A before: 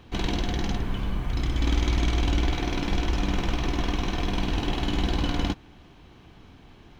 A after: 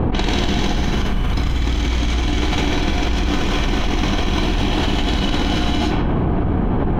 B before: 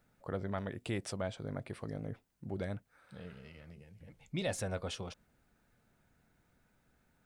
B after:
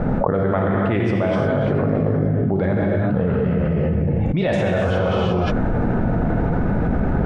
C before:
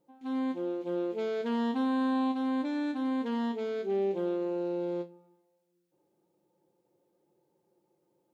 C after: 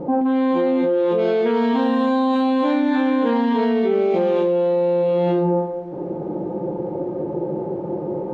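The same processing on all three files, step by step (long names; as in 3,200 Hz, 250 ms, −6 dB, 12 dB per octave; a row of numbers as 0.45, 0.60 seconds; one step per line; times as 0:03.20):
low-pass that shuts in the quiet parts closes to 750 Hz, open at −22.5 dBFS
reverb whose tail is shaped and stops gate 390 ms flat, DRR −1.5 dB
envelope flattener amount 100%
loudness normalisation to −20 LKFS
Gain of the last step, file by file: −1.0, +12.5, +5.0 decibels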